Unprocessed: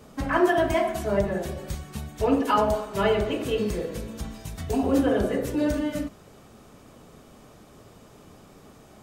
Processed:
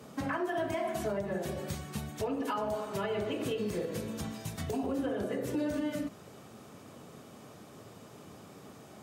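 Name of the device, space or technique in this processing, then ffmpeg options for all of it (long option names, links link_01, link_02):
podcast mastering chain: -af "highpass=frequency=91:width=0.5412,highpass=frequency=91:width=1.3066,deesser=0.75,acompressor=threshold=-30dB:ratio=2.5,alimiter=limit=-24dB:level=0:latency=1:release=129" -ar 48000 -c:a libmp3lame -b:a 112k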